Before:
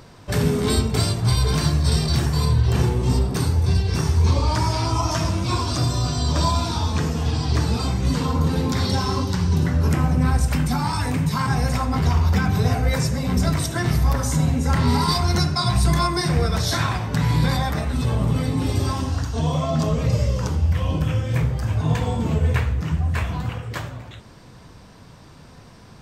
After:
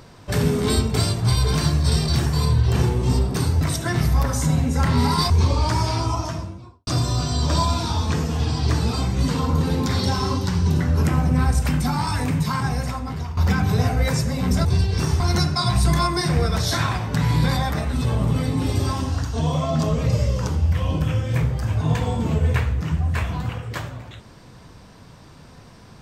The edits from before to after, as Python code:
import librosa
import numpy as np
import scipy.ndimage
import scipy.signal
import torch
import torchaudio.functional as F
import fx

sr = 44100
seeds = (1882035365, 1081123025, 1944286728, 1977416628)

y = fx.studio_fade_out(x, sr, start_s=4.72, length_s=1.01)
y = fx.edit(y, sr, fx.swap(start_s=3.61, length_s=0.55, other_s=13.51, other_length_s=1.69),
    fx.fade_out_to(start_s=11.26, length_s=0.97, floor_db=-14.0), tone=tone)